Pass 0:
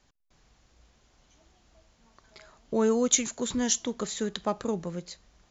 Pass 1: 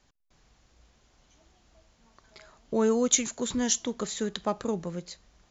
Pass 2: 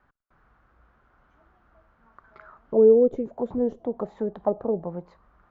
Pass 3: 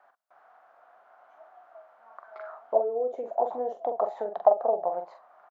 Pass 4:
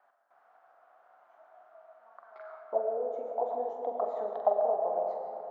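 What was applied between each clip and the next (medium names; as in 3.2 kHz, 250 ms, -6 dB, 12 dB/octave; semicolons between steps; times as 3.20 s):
no audible change
single-diode clipper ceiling -13 dBFS; touch-sensitive low-pass 460–1400 Hz down, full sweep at -23.5 dBFS
compression 12:1, threshold -24 dBFS, peak gain reduction 13 dB; resonant high-pass 690 Hz, resonance Q 6.4; doubling 44 ms -7 dB
reverberation RT60 2.9 s, pre-delay 60 ms, DRR 2.5 dB; trim -6.5 dB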